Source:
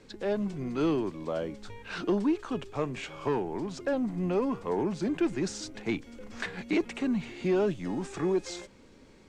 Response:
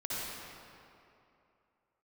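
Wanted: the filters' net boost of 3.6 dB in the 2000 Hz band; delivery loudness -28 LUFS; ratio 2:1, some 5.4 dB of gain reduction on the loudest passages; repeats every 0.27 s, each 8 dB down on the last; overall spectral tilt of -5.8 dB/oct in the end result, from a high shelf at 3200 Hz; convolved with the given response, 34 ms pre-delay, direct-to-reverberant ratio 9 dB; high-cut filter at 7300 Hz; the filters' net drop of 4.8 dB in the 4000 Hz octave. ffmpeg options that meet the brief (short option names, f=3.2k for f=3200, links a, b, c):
-filter_complex "[0:a]lowpass=7.3k,equalizer=f=2k:t=o:g=7.5,highshelf=f=3.2k:g=-5,equalizer=f=4k:t=o:g=-5.5,acompressor=threshold=-32dB:ratio=2,aecho=1:1:270|540|810|1080|1350:0.398|0.159|0.0637|0.0255|0.0102,asplit=2[a][b];[1:a]atrim=start_sample=2205,adelay=34[c];[b][c]afir=irnorm=-1:irlink=0,volume=-13.5dB[d];[a][d]amix=inputs=2:normalize=0,volume=6dB"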